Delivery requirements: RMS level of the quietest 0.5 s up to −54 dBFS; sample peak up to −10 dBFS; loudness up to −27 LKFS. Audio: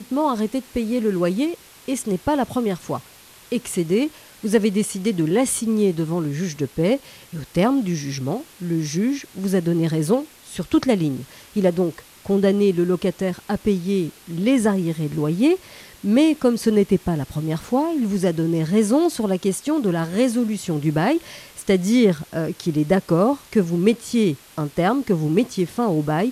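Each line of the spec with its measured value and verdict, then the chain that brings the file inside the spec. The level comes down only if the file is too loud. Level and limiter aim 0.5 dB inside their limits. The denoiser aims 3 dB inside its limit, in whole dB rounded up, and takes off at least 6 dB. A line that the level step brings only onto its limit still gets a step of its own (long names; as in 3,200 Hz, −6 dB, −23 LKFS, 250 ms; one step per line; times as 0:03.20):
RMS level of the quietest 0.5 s −47 dBFS: out of spec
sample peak −4.0 dBFS: out of spec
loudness −21.5 LKFS: out of spec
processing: broadband denoise 6 dB, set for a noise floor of −47 dBFS
level −6 dB
brickwall limiter −10.5 dBFS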